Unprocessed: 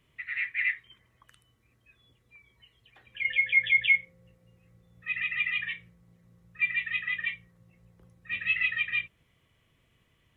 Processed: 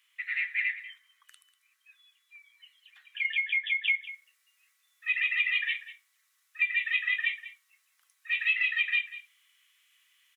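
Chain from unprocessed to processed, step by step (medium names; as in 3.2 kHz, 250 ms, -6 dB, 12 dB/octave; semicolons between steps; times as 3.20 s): high-pass 1.3 kHz 24 dB/octave; compression 12:1, threshold -28 dBFS, peak gain reduction 11.5 dB; treble shelf 2.7 kHz +7 dB, from 3.88 s +12 dB; delay 193 ms -15.5 dB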